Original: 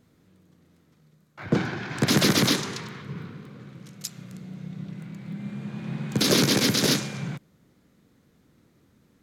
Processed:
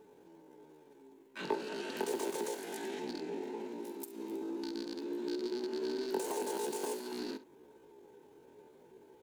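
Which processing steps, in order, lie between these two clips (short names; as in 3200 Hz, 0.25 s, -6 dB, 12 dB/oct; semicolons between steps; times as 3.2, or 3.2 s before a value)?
rattling part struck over -32 dBFS, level -22 dBFS; high shelf 9200 Hz +4.5 dB; compressor 8:1, threshold -36 dBFS, peak gain reduction 19.5 dB; small resonant body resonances 230/500/860 Hz, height 15 dB, ringing for 65 ms; pitch shift +10 st; on a send: early reflections 45 ms -16.5 dB, 68 ms -17 dB; on the sum: gain -5 dB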